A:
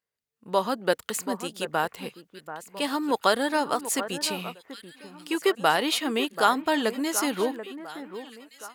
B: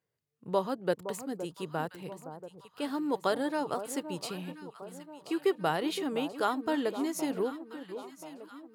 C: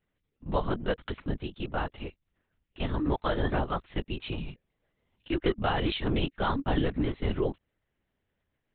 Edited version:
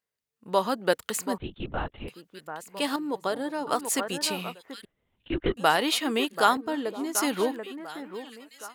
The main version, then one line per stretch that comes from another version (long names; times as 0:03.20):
A
0:01.38–0:02.08: punch in from C
0:02.96–0:03.67: punch in from B
0:04.85–0:05.57: punch in from C
0:06.57–0:07.15: punch in from B